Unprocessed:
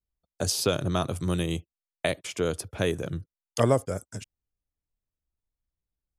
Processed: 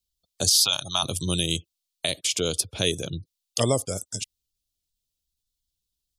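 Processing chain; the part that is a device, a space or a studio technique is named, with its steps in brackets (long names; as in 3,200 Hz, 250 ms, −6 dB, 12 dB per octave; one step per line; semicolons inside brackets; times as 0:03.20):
over-bright horn tweeter (high shelf with overshoot 2,500 Hz +12.5 dB, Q 1.5; brickwall limiter −8.5 dBFS, peak gain reduction 10 dB)
gate on every frequency bin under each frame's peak −30 dB strong
0:00.62–0:01.03: low shelf with overshoot 610 Hz −11.5 dB, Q 3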